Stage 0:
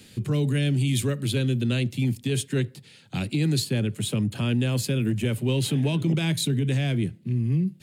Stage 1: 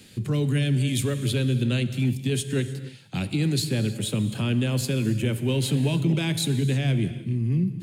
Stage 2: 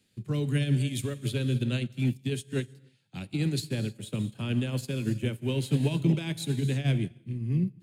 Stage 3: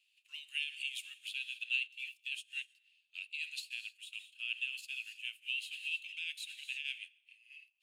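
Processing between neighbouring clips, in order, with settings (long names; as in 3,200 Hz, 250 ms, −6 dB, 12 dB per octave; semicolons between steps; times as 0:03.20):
reverb whose tail is shaped and stops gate 340 ms flat, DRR 11 dB
expander for the loud parts 2.5 to 1, over −33 dBFS
four-pole ladder high-pass 2,600 Hz, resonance 85%; level +2 dB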